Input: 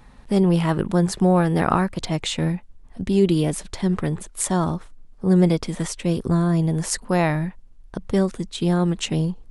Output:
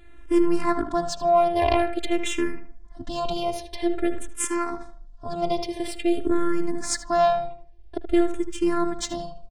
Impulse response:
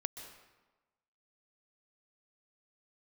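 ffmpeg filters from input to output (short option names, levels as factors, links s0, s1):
-filter_complex "[0:a]asettb=1/sr,asplit=3[s0][s1][s2];[s0]atrim=end=4.294[s3];[s1]atrim=start=4.29:end=4.72,asetpts=PTS-STARTPTS,afade=t=in:d=0.004:c=qsin,afade=t=out:st=0.426:d=0.004:c=qsin,highpass=f=270:w=0.5412,highpass=f=270:w=1.3066[s4];[s2]atrim=start=4.716[s5];[s3][s4]acrossfade=d=0.004:c1=hsin:c2=qsin[s6];[s6][s5]acrossfade=d=0.004:c1=qsin:c2=hsin,aeval=exprs='0.668*(cos(1*acos(clip(val(0)/0.668,-1,1)))-cos(1*PI/2))+0.188*(cos(4*acos(clip(val(0)/0.668,-1,1)))-cos(4*PI/2))+0.0596*(cos(5*acos(clip(val(0)/0.668,-1,1)))-cos(5*PI/2))':c=same,afftfilt=real='hypot(re,im)*cos(PI*b)':imag='0':win_size=512:overlap=0.75,asplit=2[s7][s8];[s8]adelay=77,lowpass=f=2900:p=1,volume=0.355,asplit=2[s9][s10];[s10]adelay=77,lowpass=f=2900:p=1,volume=0.35,asplit=2[s11][s12];[s12]adelay=77,lowpass=f=2900:p=1,volume=0.35,asplit=2[s13][s14];[s14]adelay=77,lowpass=f=2900:p=1,volume=0.35[s15];[s7][s9][s11][s13][s15]amix=inputs=5:normalize=0,adynamicsmooth=sensitivity=4:basefreq=7300,asplit=2[s16][s17];[s17]afreqshift=-0.49[s18];[s16][s18]amix=inputs=2:normalize=1,volume=1.33"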